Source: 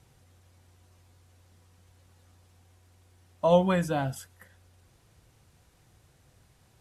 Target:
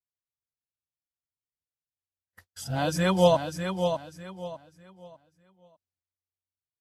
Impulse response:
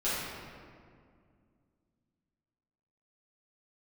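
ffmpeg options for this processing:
-af "areverse,agate=range=0.00398:threshold=0.00251:ratio=16:detection=peak,equalizer=f=4700:t=o:w=0.81:g=8,aecho=1:1:599|1198|1797|2396:0.447|0.13|0.0376|0.0109,adynamicequalizer=threshold=0.00708:dfrequency=2200:dqfactor=0.7:tfrequency=2200:tqfactor=0.7:attack=5:release=100:ratio=0.375:range=2:mode=boostabove:tftype=highshelf,volume=1.12"

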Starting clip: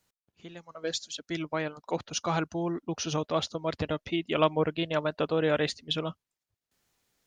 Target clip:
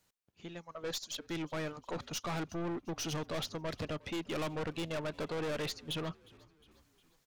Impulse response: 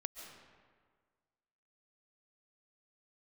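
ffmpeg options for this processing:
-filter_complex "[0:a]acontrast=37,aeval=exprs='(tanh(28.2*val(0)+0.25)-tanh(0.25))/28.2':c=same,asplit=5[s0][s1][s2][s3][s4];[s1]adelay=358,afreqshift=-48,volume=0.0668[s5];[s2]adelay=716,afreqshift=-96,volume=0.0376[s6];[s3]adelay=1074,afreqshift=-144,volume=0.0209[s7];[s4]adelay=1432,afreqshift=-192,volume=0.0117[s8];[s0][s5][s6][s7][s8]amix=inputs=5:normalize=0,volume=0.562"

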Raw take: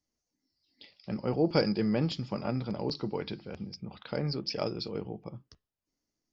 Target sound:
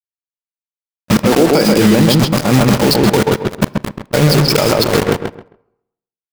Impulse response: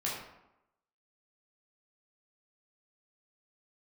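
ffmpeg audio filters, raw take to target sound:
-filter_complex "[0:a]asettb=1/sr,asplit=3[s0][s1][s2];[s0]atrim=end=1.244[s3];[s1]atrim=start=1.24:end=1.78,asetpts=PTS-STARTPTS,afade=t=in:d=0.004:c=qsin,afade=t=out:st=0.536:d=0.004:c=qsin,highpass=f=180:w=0.5412,highpass=f=180:w=1.3066[s4];[s2]atrim=start=1.776[s5];[s3][s4]acrossfade=d=0.004:c1=hsin:c2=qsin[s6];[s6][s5]acrossfade=d=0.004:c1=qsin:c2=hsin,acrusher=bits=5:mix=0:aa=0.000001,agate=range=0.00562:threshold=0.0224:ratio=16:detection=peak,acompressor=threshold=0.0158:ratio=3,asplit=2[s7][s8];[s8]adelay=133,lowpass=f=2200:p=1,volume=0.631,asplit=2[s9][s10];[s10]adelay=133,lowpass=f=2200:p=1,volume=0.22,asplit=2[s11][s12];[s12]adelay=133,lowpass=f=2200:p=1,volume=0.22[s13];[s7][s9][s11][s13]amix=inputs=4:normalize=0,asplit=2[s14][s15];[1:a]atrim=start_sample=2205[s16];[s15][s16]afir=irnorm=-1:irlink=0,volume=0.0562[s17];[s14][s17]amix=inputs=2:normalize=0,alimiter=level_in=47.3:limit=0.891:release=50:level=0:latency=1,volume=0.891"

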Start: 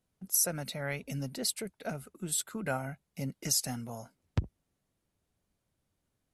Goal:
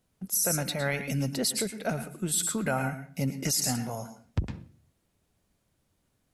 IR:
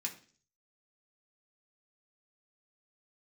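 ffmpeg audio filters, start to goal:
-filter_complex "[0:a]asplit=2[s0][s1];[1:a]atrim=start_sample=2205,adelay=108[s2];[s1][s2]afir=irnorm=-1:irlink=0,volume=0.355[s3];[s0][s3]amix=inputs=2:normalize=0,alimiter=level_in=1.06:limit=0.0631:level=0:latency=1:release=14,volume=0.944,volume=2.24"

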